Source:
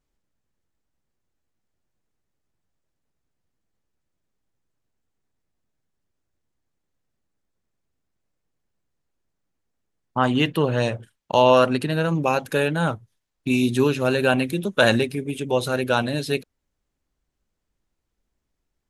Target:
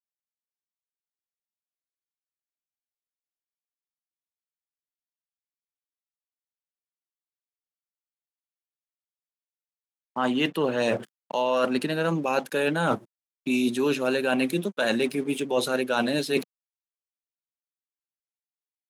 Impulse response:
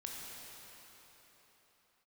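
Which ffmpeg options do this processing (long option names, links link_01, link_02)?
-af "dynaudnorm=framelen=220:gausssize=3:maxgain=10dB,aeval=exprs='sgn(val(0))*max(abs(val(0))-0.00531,0)':channel_layout=same,apsyclip=5.5dB,highpass=frequency=190:width=0.5412,highpass=frequency=190:width=1.3066,areverse,acompressor=threshold=-23dB:ratio=5,areverse"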